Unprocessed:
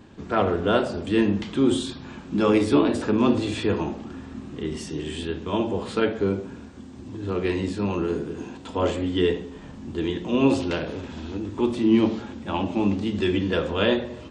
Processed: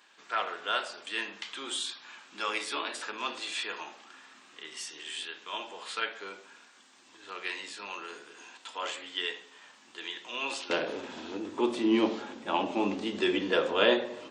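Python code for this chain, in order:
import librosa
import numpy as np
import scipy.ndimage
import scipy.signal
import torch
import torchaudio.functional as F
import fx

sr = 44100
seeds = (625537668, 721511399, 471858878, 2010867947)

y = fx.highpass(x, sr, hz=fx.steps((0.0, 1400.0), (10.7, 410.0)), slope=12)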